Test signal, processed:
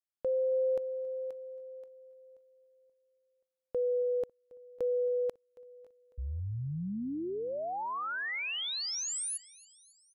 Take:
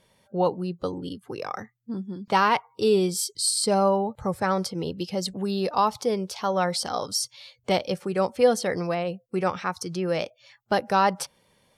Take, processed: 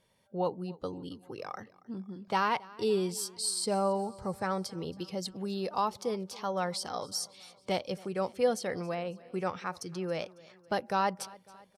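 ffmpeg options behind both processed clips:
-af "aecho=1:1:275|550|825|1100:0.0794|0.0461|0.0267|0.0155,volume=-8dB"

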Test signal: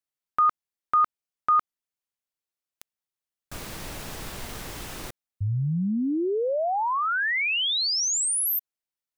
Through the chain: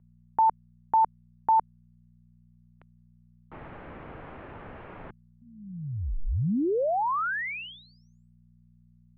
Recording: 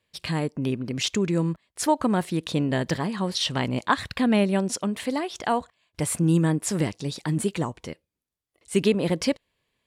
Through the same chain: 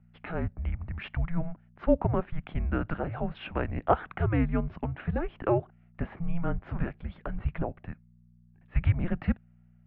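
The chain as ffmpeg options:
-filter_complex "[0:a]acrossover=split=270 2000:gain=0.2 1 0.141[a][b][c];[a][b][c]amix=inputs=3:normalize=0,aeval=exprs='val(0)+0.00355*(sin(2*PI*60*n/s)+sin(2*PI*2*60*n/s)/2+sin(2*PI*3*60*n/s)/3+sin(2*PI*4*60*n/s)/4+sin(2*PI*5*60*n/s)/5)':c=same,highpass=f=160:t=q:w=0.5412,highpass=f=160:t=q:w=1.307,lowpass=f=3.2k:t=q:w=0.5176,lowpass=f=3.2k:t=q:w=0.7071,lowpass=f=3.2k:t=q:w=1.932,afreqshift=-340"

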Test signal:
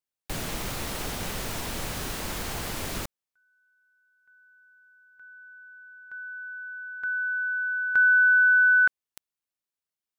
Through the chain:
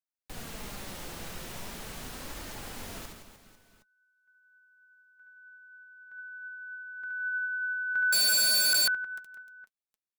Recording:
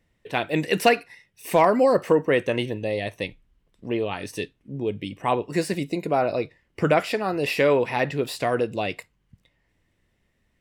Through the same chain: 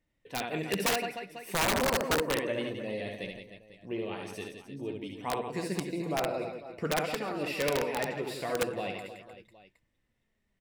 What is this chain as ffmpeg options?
-af "flanger=delay=3.2:depth=3:regen=59:speed=0.41:shape=triangular,aecho=1:1:70|168|305.2|497.3|766.2:0.631|0.398|0.251|0.158|0.1,aeval=exprs='(mod(5.31*val(0)+1,2)-1)/5.31':c=same,volume=-6.5dB"

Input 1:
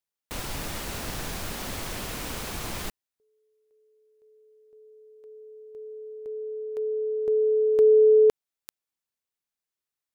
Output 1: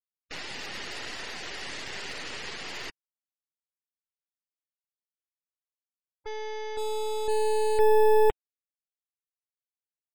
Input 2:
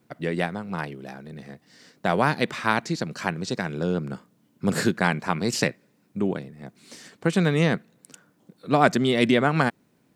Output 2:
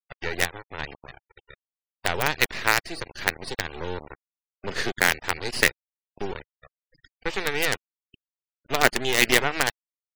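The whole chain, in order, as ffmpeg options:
-af "highpass=390,equalizer=f=400:t=q:w=4:g=5,equalizer=f=630:t=q:w=4:g=-3,equalizer=f=1.1k:t=q:w=4:g=-6,equalizer=f=1.9k:t=q:w=4:g=10,equalizer=f=2.8k:t=q:w=4:g=7,equalizer=f=4.7k:t=q:w=4:g=7,lowpass=f=5.3k:w=0.5412,lowpass=f=5.3k:w=1.3066,acrusher=bits=3:dc=4:mix=0:aa=0.000001,afftfilt=real='re*gte(hypot(re,im),0.0112)':imag='im*gte(hypot(re,im),0.0112)':win_size=1024:overlap=0.75"

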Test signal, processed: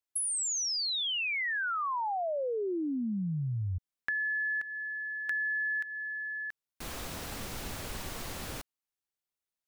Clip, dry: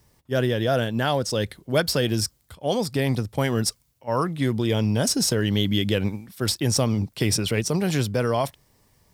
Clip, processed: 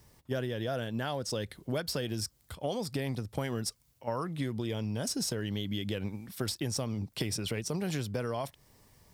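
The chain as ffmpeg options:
-af "acompressor=threshold=-31dB:ratio=6"

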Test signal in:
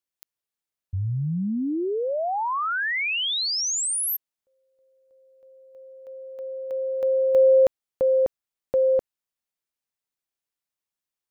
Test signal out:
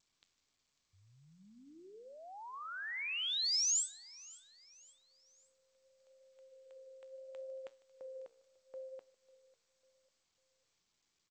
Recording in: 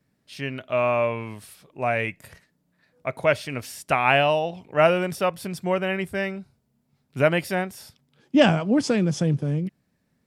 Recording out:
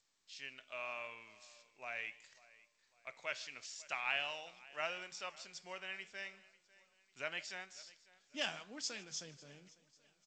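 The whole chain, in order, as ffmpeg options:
-filter_complex "[0:a]aderivative,asplit=2[a][b];[b]aecho=0:1:547|1094|1641:0.0794|0.0326|0.0134[c];[a][c]amix=inputs=2:normalize=0,adynamicequalizer=threshold=0.00158:dfrequency=570:dqfactor=2.3:tfrequency=570:tqfactor=2.3:attack=5:release=100:ratio=0.417:range=3:mode=cutabove:tftype=bell,flanger=delay=8.2:depth=7.9:regen=-83:speed=0.78:shape=sinusoidal,asplit=2[d][e];[e]adelay=151.6,volume=-22dB,highshelf=f=4k:g=-3.41[f];[d][f]amix=inputs=2:normalize=0" -ar 16000 -c:a g722

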